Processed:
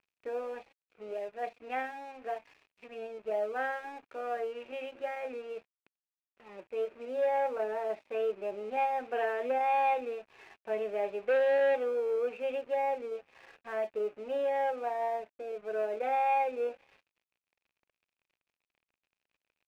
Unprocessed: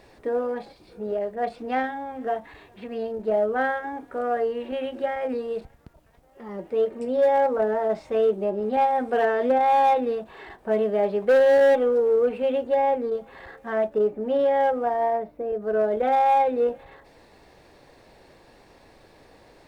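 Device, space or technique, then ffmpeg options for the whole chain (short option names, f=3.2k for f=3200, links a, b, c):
pocket radio on a weak battery: -af "highpass=390,lowpass=3k,aeval=exprs='sgn(val(0))*max(abs(val(0))-0.00398,0)':c=same,equalizer=f=2.5k:t=o:w=0.32:g=12,volume=-8.5dB"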